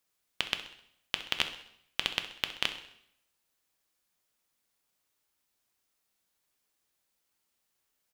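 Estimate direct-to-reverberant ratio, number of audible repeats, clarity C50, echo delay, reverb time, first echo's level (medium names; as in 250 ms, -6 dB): 7.0 dB, 4, 10.0 dB, 65 ms, 0.70 s, -15.0 dB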